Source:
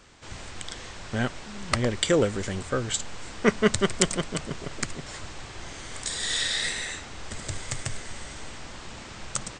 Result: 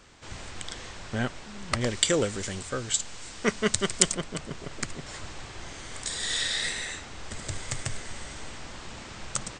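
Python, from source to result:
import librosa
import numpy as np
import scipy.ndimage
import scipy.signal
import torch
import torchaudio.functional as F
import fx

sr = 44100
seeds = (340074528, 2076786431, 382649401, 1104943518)

y = fx.high_shelf(x, sr, hz=3100.0, db=10.0, at=(1.81, 4.13))
y = fx.rider(y, sr, range_db=4, speed_s=2.0)
y = F.gain(torch.from_numpy(y), -4.5).numpy()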